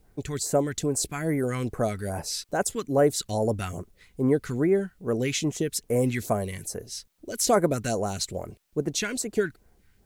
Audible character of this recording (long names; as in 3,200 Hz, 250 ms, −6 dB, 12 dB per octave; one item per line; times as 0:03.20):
phaser sweep stages 2, 2.4 Hz, lowest notch 540–3,700 Hz
a quantiser's noise floor 12 bits, dither triangular